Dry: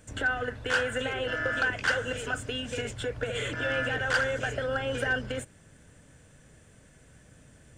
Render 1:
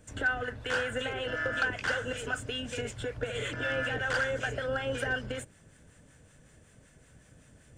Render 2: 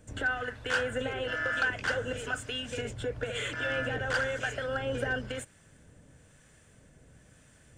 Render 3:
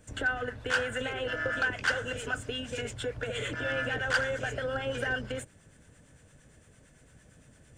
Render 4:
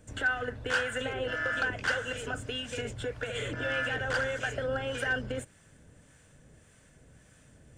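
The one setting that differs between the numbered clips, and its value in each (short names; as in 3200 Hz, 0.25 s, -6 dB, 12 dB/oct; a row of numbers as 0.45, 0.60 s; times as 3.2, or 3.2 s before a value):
harmonic tremolo, rate: 5.3, 1, 8.8, 1.7 Hz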